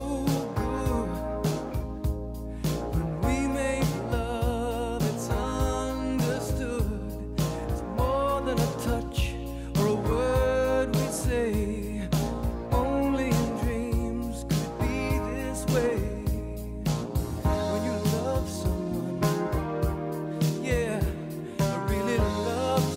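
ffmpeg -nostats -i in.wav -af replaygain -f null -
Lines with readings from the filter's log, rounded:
track_gain = +10.1 dB
track_peak = 0.175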